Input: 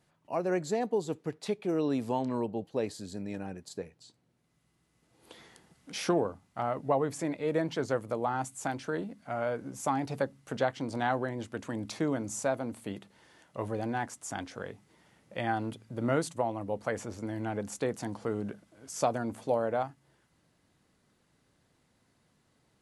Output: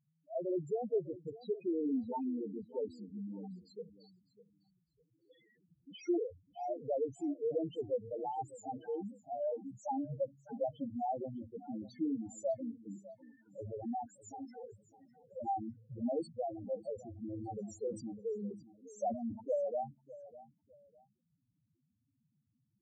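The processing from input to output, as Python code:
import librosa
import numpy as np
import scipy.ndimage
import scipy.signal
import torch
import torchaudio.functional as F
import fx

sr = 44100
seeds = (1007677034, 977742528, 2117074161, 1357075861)

y = fx.spec_topn(x, sr, count=2)
y = fx.echo_feedback(y, sr, ms=603, feedback_pct=26, wet_db=-17.5)
y = fx.sustainer(y, sr, db_per_s=120.0, at=(17.33, 19.58), fade=0.02)
y = y * librosa.db_to_amplitude(-1.5)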